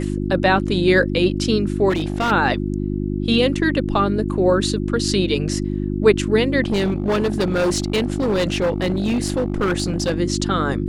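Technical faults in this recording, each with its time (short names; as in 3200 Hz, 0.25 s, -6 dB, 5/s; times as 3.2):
hum 50 Hz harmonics 7 -23 dBFS
1.89–2.32 clipped -16.5 dBFS
6.64–10.18 clipped -15.5 dBFS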